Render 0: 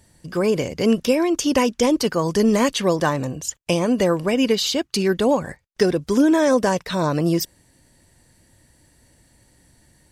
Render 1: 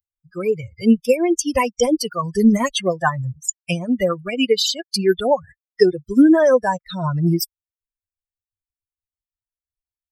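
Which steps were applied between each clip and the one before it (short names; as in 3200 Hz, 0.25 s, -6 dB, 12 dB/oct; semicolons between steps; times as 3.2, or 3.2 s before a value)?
per-bin expansion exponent 3; de-esser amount 35%; gain +8 dB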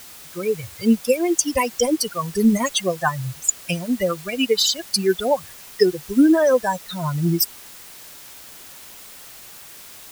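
high shelf 5900 Hz +10.5 dB; added noise white -39 dBFS; gain -2.5 dB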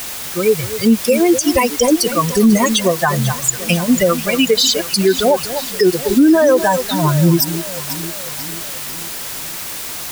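added noise white -38 dBFS; echo with dull and thin repeats by turns 0.246 s, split 1800 Hz, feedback 73%, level -14 dB; maximiser +12.5 dB; gain -3 dB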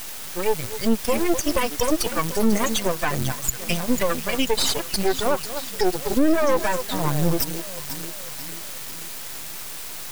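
half-wave rectifier; gain -4 dB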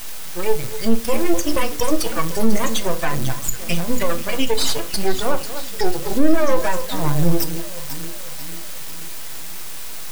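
shoebox room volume 210 m³, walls furnished, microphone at 0.61 m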